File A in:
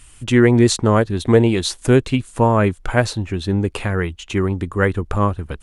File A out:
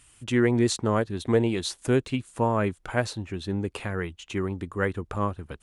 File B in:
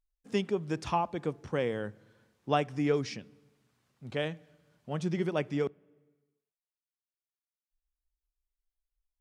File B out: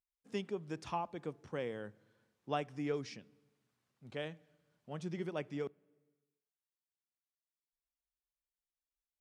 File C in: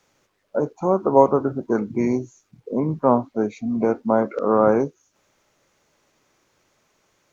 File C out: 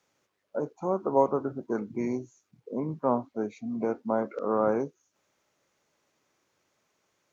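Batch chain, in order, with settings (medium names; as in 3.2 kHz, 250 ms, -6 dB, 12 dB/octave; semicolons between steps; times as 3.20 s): high-pass 100 Hz 6 dB/octave; trim -8.5 dB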